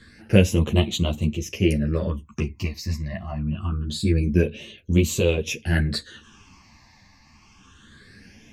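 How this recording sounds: phasing stages 8, 0.25 Hz, lowest notch 420–1600 Hz; tremolo triangle 0.52 Hz, depth 40%; a shimmering, thickened sound

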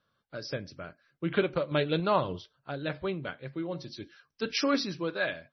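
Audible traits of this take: random-step tremolo; MP3

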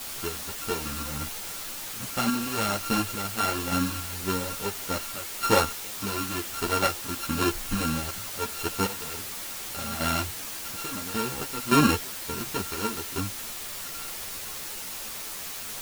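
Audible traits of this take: a buzz of ramps at a fixed pitch in blocks of 32 samples; random-step tremolo, depth 95%; a quantiser's noise floor 6-bit, dither triangular; a shimmering, thickened sound

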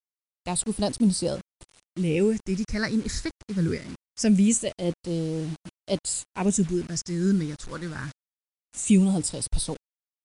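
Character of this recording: phasing stages 6, 0.23 Hz, lowest notch 720–2000 Hz; a quantiser's noise floor 8-bit, dither none; MP2

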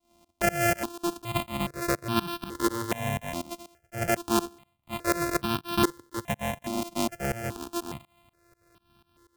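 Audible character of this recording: a buzz of ramps at a fixed pitch in blocks of 128 samples; tremolo saw up 4.1 Hz, depth 95%; notches that jump at a steady rate 2.4 Hz 440–2000 Hz

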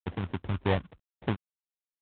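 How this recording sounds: a quantiser's noise floor 12-bit, dither none; phasing stages 6, 3.3 Hz, lowest notch 470–1900 Hz; aliases and images of a low sample rate 1.3 kHz, jitter 20%; µ-law

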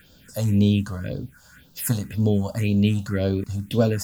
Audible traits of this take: a quantiser's noise floor 10-bit, dither triangular; phasing stages 4, 1.9 Hz, lowest notch 350–2000 Hz

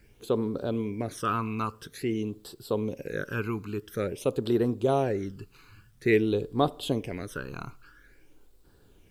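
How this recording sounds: phasing stages 12, 0.49 Hz, lowest notch 570–2200 Hz; a quantiser's noise floor 12-bit, dither none

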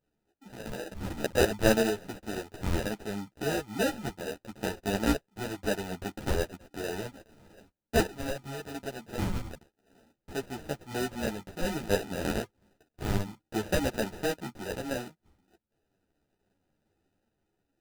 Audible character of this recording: aliases and images of a low sample rate 1.1 kHz, jitter 0%; random-step tremolo 1.1 Hz; a shimmering, thickened sound

